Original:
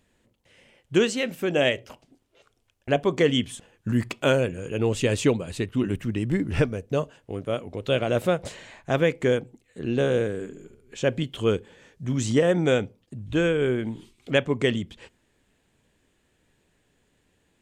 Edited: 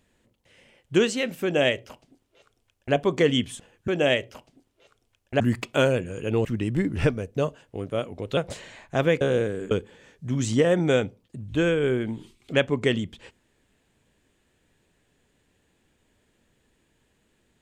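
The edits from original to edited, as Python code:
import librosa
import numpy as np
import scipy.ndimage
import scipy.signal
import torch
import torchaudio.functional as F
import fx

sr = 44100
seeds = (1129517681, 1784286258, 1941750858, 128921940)

y = fx.edit(x, sr, fx.duplicate(start_s=1.43, length_s=1.52, to_s=3.88),
    fx.cut(start_s=4.93, length_s=1.07),
    fx.cut(start_s=7.92, length_s=0.4),
    fx.cut(start_s=9.16, length_s=0.85),
    fx.cut(start_s=10.51, length_s=0.98), tone=tone)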